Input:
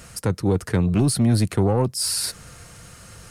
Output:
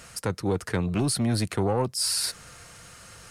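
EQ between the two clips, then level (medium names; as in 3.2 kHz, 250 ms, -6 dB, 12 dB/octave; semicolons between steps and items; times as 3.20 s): bass shelf 420 Hz -8.5 dB; treble shelf 9.3 kHz -6 dB; 0.0 dB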